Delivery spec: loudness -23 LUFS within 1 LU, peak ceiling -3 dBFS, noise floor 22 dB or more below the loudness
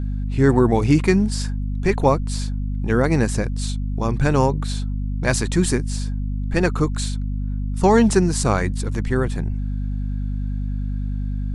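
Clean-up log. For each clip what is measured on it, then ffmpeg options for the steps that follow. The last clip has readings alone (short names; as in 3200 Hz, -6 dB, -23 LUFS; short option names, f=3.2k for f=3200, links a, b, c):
hum 50 Hz; harmonics up to 250 Hz; hum level -21 dBFS; loudness -21.5 LUFS; peak -2.5 dBFS; loudness target -23.0 LUFS
-> -af "bandreject=f=50:t=h:w=4,bandreject=f=100:t=h:w=4,bandreject=f=150:t=h:w=4,bandreject=f=200:t=h:w=4,bandreject=f=250:t=h:w=4"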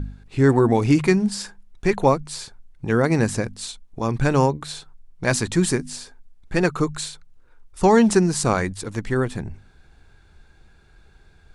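hum none; loudness -21.0 LUFS; peak -3.0 dBFS; loudness target -23.0 LUFS
-> -af "volume=-2dB"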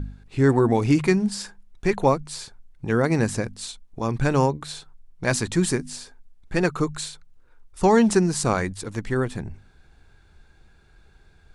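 loudness -23.0 LUFS; peak -5.0 dBFS; noise floor -55 dBFS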